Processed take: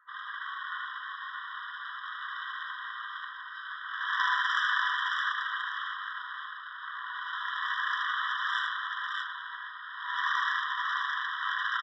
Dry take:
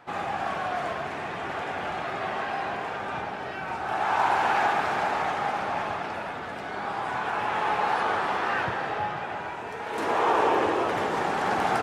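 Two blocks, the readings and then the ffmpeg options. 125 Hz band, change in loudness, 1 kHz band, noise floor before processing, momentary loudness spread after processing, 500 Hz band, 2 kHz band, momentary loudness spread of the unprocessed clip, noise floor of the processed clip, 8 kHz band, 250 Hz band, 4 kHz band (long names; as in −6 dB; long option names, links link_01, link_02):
below −40 dB, −4.5 dB, −8.5 dB, −35 dBFS, 12 LU, below −40 dB, +0.5 dB, 10 LU, −43 dBFS, below −10 dB, below −40 dB, +3.0 dB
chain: -filter_complex "[0:a]afftfilt=real='re*between(b*sr/4096,700,2800)':imag='im*between(b*sr/4096,700,2800)':win_size=4096:overlap=0.75,highshelf=frequency=2100:gain=3,areverse,acompressor=mode=upward:threshold=-37dB:ratio=2.5,areverse,aeval=exprs='0.266*(cos(1*acos(clip(val(0)/0.266,-1,1)))-cos(1*PI/2))+0.0531*(cos(3*acos(clip(val(0)/0.266,-1,1)))-cos(3*PI/2))+0.075*(cos(4*acos(clip(val(0)/0.266,-1,1)))-cos(4*PI/2))':channel_layout=same,asplit=2[link_01][link_02];[link_02]aecho=0:1:76|617:0.631|0.708[link_03];[link_01][link_03]amix=inputs=2:normalize=0,afftfilt=real='re*eq(mod(floor(b*sr/1024/990),2),1)':imag='im*eq(mod(floor(b*sr/1024/990),2),1)':win_size=1024:overlap=0.75"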